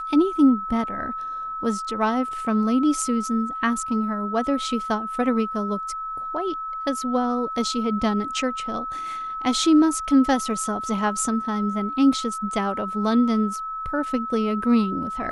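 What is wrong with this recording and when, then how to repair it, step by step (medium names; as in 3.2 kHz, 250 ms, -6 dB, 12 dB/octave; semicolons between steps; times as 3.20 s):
whine 1.3 kHz -28 dBFS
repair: band-stop 1.3 kHz, Q 30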